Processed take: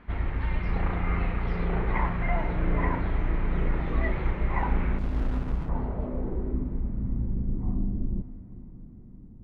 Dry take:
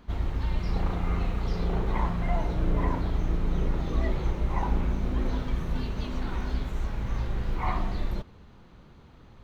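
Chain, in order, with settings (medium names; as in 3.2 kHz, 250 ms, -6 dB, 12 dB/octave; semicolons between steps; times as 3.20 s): low-pass sweep 2.1 kHz -> 240 Hz, 5.06–6.84 s; echo that smears into a reverb 497 ms, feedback 52%, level -16 dB; 4.98–5.69 s: sliding maximum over 65 samples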